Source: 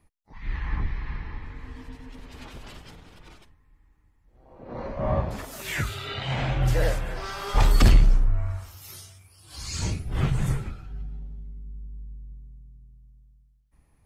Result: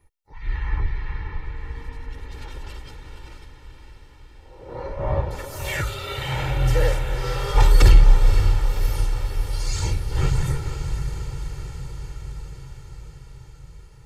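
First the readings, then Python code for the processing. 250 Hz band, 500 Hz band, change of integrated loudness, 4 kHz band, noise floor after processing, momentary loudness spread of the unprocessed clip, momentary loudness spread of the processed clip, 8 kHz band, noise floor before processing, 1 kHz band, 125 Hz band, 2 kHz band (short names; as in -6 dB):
-1.5 dB, +3.5 dB, +3.5 dB, +2.5 dB, -47 dBFS, 20 LU, 21 LU, +3.0 dB, -63 dBFS, +3.0 dB, +4.0 dB, +2.5 dB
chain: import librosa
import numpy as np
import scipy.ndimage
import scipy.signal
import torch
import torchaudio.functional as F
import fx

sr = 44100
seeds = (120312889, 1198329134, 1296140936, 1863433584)

y = x + 0.76 * np.pad(x, (int(2.2 * sr / 1000.0), 0))[:len(x)]
y = fx.echo_diffused(y, sr, ms=548, feedback_pct=68, wet_db=-8.5)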